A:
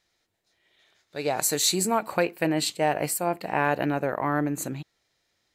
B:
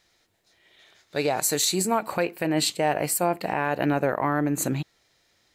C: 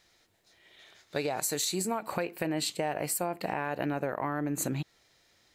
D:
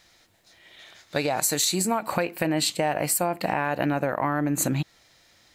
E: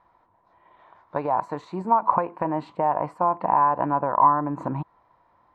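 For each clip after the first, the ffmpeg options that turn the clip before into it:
ffmpeg -i in.wav -af "alimiter=limit=-20dB:level=0:latency=1:release=377,volume=7.5dB" out.wav
ffmpeg -i in.wav -af "acompressor=threshold=-28dB:ratio=6" out.wav
ffmpeg -i in.wav -af "equalizer=frequency=410:width_type=o:width=0.32:gain=-6.5,volume=7.5dB" out.wav
ffmpeg -i in.wav -af "lowpass=frequency=1000:width_type=q:width=11,volume=-4dB" out.wav

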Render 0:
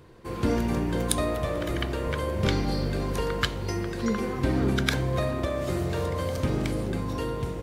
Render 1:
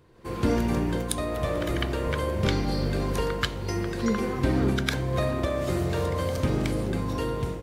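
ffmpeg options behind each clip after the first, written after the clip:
ffmpeg -i in.wav -af "dynaudnorm=framelen=130:gausssize=3:maxgain=8.5dB,volume=-7dB" out.wav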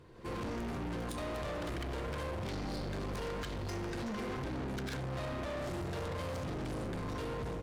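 ffmpeg -i in.wav -af "highshelf=frequency=12000:gain=-11,alimiter=limit=-21dB:level=0:latency=1:release=76,asoftclip=type=tanh:threshold=-37.5dB,volume=1dB" out.wav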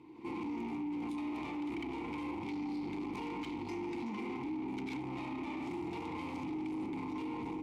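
ffmpeg -i in.wav -filter_complex "[0:a]asplit=3[link_01][link_02][link_03];[link_01]bandpass=frequency=300:width_type=q:width=8,volume=0dB[link_04];[link_02]bandpass=frequency=870:width_type=q:width=8,volume=-6dB[link_05];[link_03]bandpass=frequency=2240:width_type=q:width=8,volume=-9dB[link_06];[link_04][link_05][link_06]amix=inputs=3:normalize=0,alimiter=level_in=23dB:limit=-24dB:level=0:latency=1:release=17,volume=-23dB,crystalizer=i=2:c=0,volume=14dB" out.wav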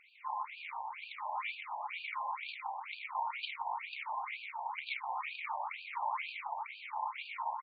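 ffmpeg -i in.wav -af "aecho=1:1:566:0.316,afftfilt=real='re*between(b*sr/1024,750*pow(3400/750,0.5+0.5*sin(2*PI*2.1*pts/sr))/1.41,750*pow(3400/750,0.5+0.5*sin(2*PI*2.1*pts/sr))*1.41)':imag='im*between(b*sr/1024,750*pow(3400/750,0.5+0.5*sin(2*PI*2.1*pts/sr))/1.41,750*pow(3400/750,0.5+0.5*sin(2*PI*2.1*pts/sr))*1.41)':win_size=1024:overlap=0.75,volume=11.5dB" out.wav

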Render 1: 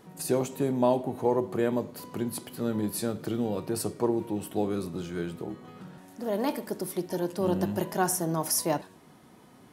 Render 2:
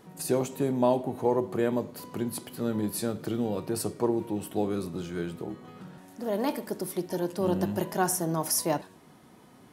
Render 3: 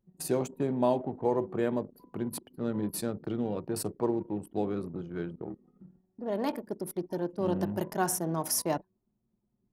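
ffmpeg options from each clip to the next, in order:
ffmpeg -i in.wav -af anull out.wav
ffmpeg -i in.wav -af "anlmdn=2.51,volume=-2.5dB" out.wav

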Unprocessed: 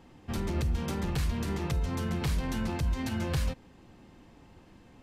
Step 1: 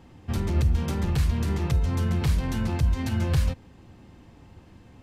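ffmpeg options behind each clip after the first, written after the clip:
ffmpeg -i in.wav -af "equalizer=frequency=89:width_type=o:width=1.3:gain=8,volume=2dB" out.wav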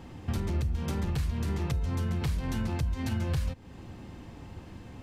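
ffmpeg -i in.wav -af "acompressor=threshold=-34dB:ratio=4,volume=5dB" out.wav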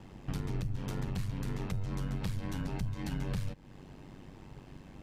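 ffmpeg -i in.wav -af "aeval=exprs='val(0)*sin(2*PI*48*n/s)':channel_layout=same,volume=-2dB" out.wav

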